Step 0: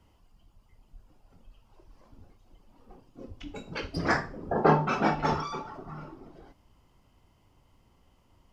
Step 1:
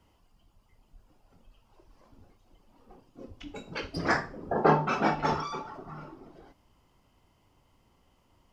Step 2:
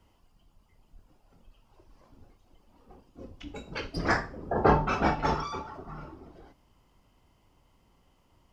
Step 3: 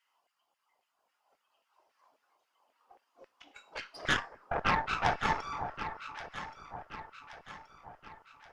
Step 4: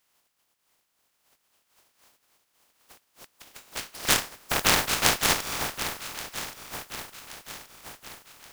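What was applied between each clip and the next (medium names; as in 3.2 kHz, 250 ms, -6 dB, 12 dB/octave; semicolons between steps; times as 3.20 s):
bass shelf 160 Hz -5 dB
octave divider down 2 oct, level -2 dB
LFO high-pass saw down 3.7 Hz 580–2000 Hz; Chebyshev shaper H 6 -12 dB, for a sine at -6.5 dBFS; echo whose repeats swap between lows and highs 563 ms, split 1.2 kHz, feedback 69%, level -8 dB; trim -8 dB
spectral contrast reduction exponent 0.2; trim +7 dB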